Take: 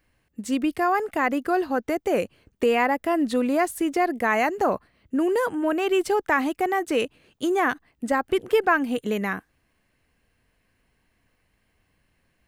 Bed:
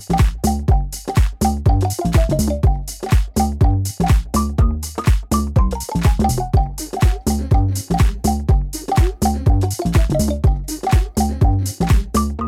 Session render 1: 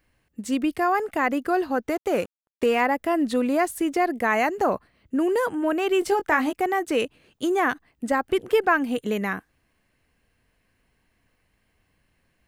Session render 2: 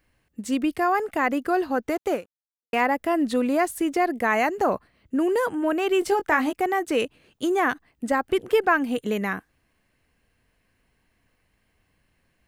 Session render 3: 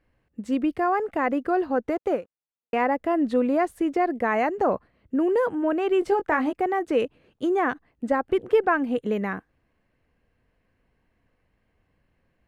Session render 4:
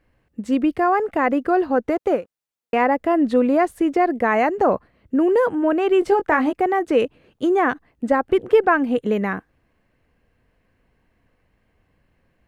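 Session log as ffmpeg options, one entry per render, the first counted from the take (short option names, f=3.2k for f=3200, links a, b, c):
-filter_complex "[0:a]asettb=1/sr,asplit=3[a][b][c];[a]atrim=end=1.914[d];[b]atrim=start=1.91:end=2.81,asetpts=PTS-STARTPTS,afade=t=in:d=0.004:c=qsin,afade=t=out:st=0.896:d=0.004:c=qsin,aeval=exprs='sgn(val(0))*max(abs(val(0))-0.00891,0)':c=same[e];[c]atrim=start=2.806[f];[d][e]acrossfade=d=0.004:c1=hsin:c2=qsin[g];[g][f]acrossfade=d=0.004:c1=qsin:c2=hsin,asettb=1/sr,asplit=3[h][i][j];[h]atrim=end=6.004[k];[i]atrim=start=6:end=6.53,asetpts=PTS-STARTPTS,afade=t=in:d=0.004:c=qsin,afade=t=out:st=0.526:d=0.004:c=qsin,asplit=2[l][m];[m]adelay=20,volume=-8dB[n];[l][n]amix=inputs=2:normalize=0,atrim=end_sample=23373[o];[j]atrim=start=6.526[p];[k][o]acrossfade=d=0.004:c1=hsin:c2=qsin[q];[q][p]acrossfade=d=0.004:c1=qsin:c2=hsin"
-filter_complex "[0:a]asplit=2[a][b];[a]atrim=end=2.73,asetpts=PTS-STARTPTS,afade=t=out:st=2.13:d=0.6:c=exp[c];[b]atrim=start=2.73,asetpts=PTS-STARTPTS,afade=t=in:d=0.004:c=hsin[d];[c][d]concat=n=2:v=0:a=1"
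-af "lowpass=f=1.4k:p=1,equalizer=f=510:t=o:w=0.36:g=3"
-af "volume=5dB"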